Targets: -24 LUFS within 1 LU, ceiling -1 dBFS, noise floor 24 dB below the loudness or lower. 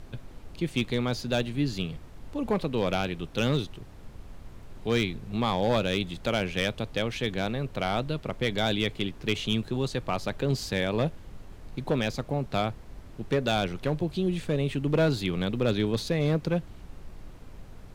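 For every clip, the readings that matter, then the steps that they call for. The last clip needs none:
clipped samples 0.5%; clipping level -17.0 dBFS; noise floor -46 dBFS; noise floor target -53 dBFS; loudness -29.0 LUFS; peak level -17.0 dBFS; loudness target -24.0 LUFS
-> clip repair -17 dBFS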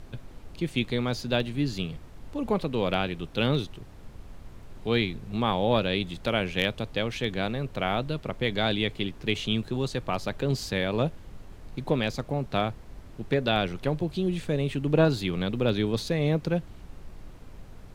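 clipped samples 0.0%; noise floor -46 dBFS; noise floor target -52 dBFS
-> noise print and reduce 6 dB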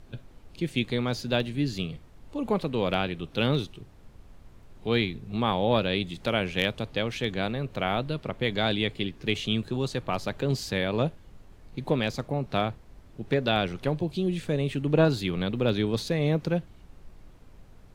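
noise floor -52 dBFS; loudness -28.0 LUFS; peak level -8.0 dBFS; loudness target -24.0 LUFS
-> trim +4 dB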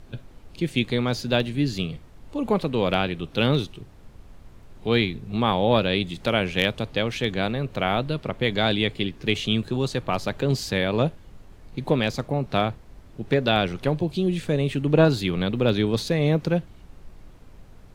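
loudness -24.0 LUFS; peak level -4.0 dBFS; noise floor -48 dBFS

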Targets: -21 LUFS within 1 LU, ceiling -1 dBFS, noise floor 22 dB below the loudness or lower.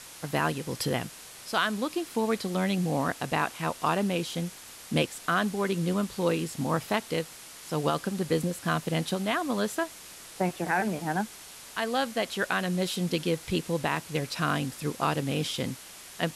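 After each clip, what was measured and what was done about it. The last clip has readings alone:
noise floor -47 dBFS; noise floor target -52 dBFS; loudness -29.5 LUFS; peak level -13.5 dBFS; loudness target -21.0 LUFS
-> noise print and reduce 6 dB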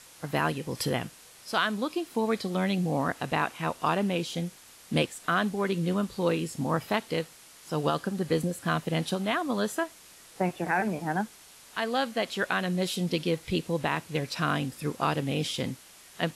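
noise floor -53 dBFS; loudness -29.5 LUFS; peak level -13.5 dBFS; loudness target -21.0 LUFS
-> trim +8.5 dB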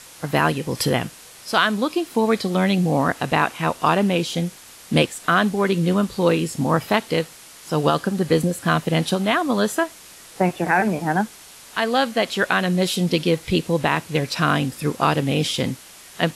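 loudness -21.0 LUFS; peak level -5.0 dBFS; noise floor -44 dBFS

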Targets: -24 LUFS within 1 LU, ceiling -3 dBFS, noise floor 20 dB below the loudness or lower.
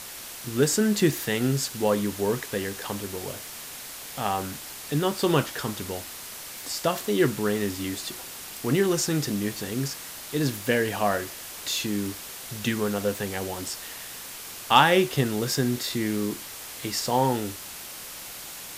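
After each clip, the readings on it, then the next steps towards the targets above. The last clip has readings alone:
noise floor -40 dBFS; noise floor target -47 dBFS; loudness -27.0 LUFS; peak level -5.0 dBFS; loudness target -24.0 LUFS
-> noise reduction 7 dB, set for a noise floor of -40 dBFS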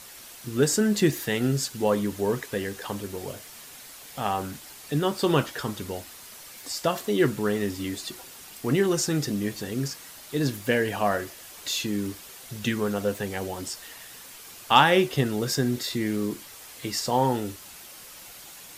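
noise floor -45 dBFS; noise floor target -47 dBFS
-> noise reduction 6 dB, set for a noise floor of -45 dBFS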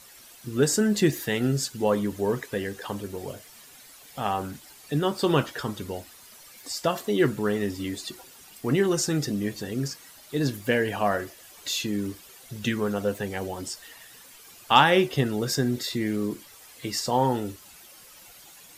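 noise floor -50 dBFS; loudness -26.5 LUFS; peak level -4.5 dBFS; loudness target -24.0 LUFS
-> trim +2.5 dB; peak limiter -3 dBFS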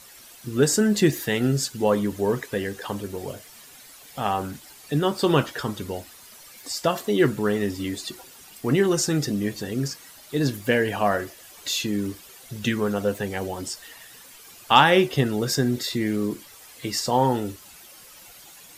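loudness -24.0 LUFS; peak level -3.0 dBFS; noise floor -47 dBFS

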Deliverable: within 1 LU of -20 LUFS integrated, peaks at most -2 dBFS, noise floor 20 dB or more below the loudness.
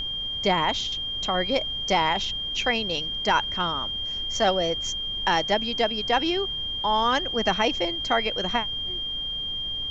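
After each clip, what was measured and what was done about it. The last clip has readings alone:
steady tone 3.2 kHz; tone level -28 dBFS; noise floor -31 dBFS; noise floor target -45 dBFS; loudness -24.5 LUFS; peak level -8.0 dBFS; loudness target -20.0 LUFS
-> band-stop 3.2 kHz, Q 30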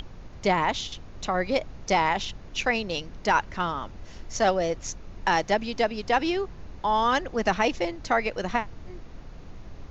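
steady tone not found; noise floor -44 dBFS; noise floor target -47 dBFS
-> noise print and reduce 6 dB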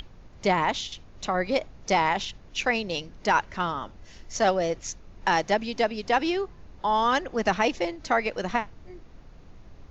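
noise floor -49 dBFS; loudness -26.5 LUFS; peak level -9.0 dBFS; loudness target -20.0 LUFS
-> trim +6.5 dB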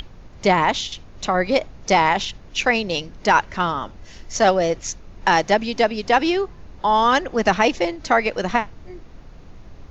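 loudness -20.0 LUFS; peak level -3.0 dBFS; noise floor -43 dBFS

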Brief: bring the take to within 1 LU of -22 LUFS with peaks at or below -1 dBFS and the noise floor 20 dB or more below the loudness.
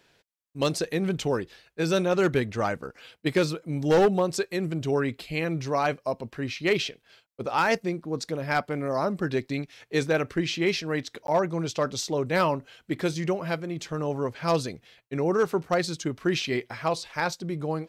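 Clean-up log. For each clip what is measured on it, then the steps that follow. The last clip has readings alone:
clipped samples 0.4%; clipping level -15.0 dBFS; dropouts 1; longest dropout 12 ms; loudness -27.5 LUFS; peak level -15.0 dBFS; loudness target -22.0 LUFS
-> clip repair -15 dBFS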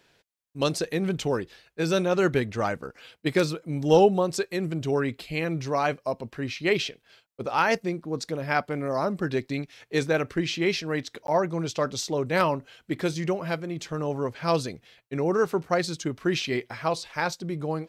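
clipped samples 0.0%; dropouts 1; longest dropout 12 ms
-> interpolate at 11.27 s, 12 ms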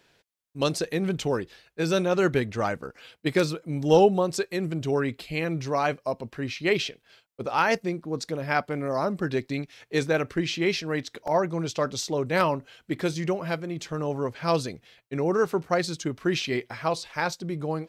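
dropouts 0; loudness -27.0 LUFS; peak level -7.5 dBFS; loudness target -22.0 LUFS
-> trim +5 dB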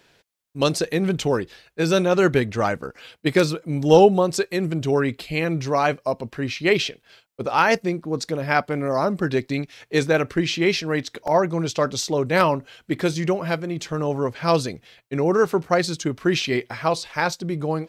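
loudness -22.0 LUFS; peak level -2.5 dBFS; noise floor -63 dBFS

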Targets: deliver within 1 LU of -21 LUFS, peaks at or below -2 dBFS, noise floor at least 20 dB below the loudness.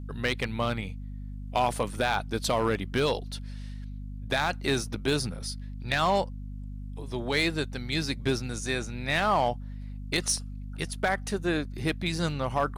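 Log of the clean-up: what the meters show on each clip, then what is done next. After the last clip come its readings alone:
clipped samples 0.3%; clipping level -17.0 dBFS; hum 50 Hz; highest harmonic 250 Hz; hum level -35 dBFS; loudness -29.0 LUFS; peak level -17.0 dBFS; loudness target -21.0 LUFS
-> clip repair -17 dBFS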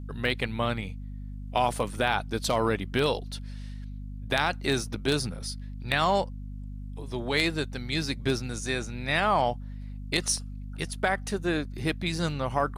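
clipped samples 0.0%; hum 50 Hz; highest harmonic 250 Hz; hum level -35 dBFS
-> hum notches 50/100/150/200/250 Hz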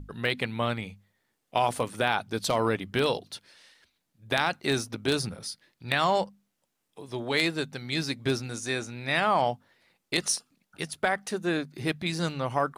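hum not found; loudness -29.0 LUFS; peak level -8.0 dBFS; loudness target -21.0 LUFS
-> trim +8 dB; peak limiter -2 dBFS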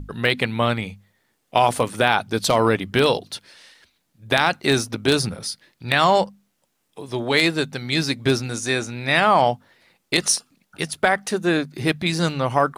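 loudness -21.0 LUFS; peak level -2.0 dBFS; noise floor -71 dBFS

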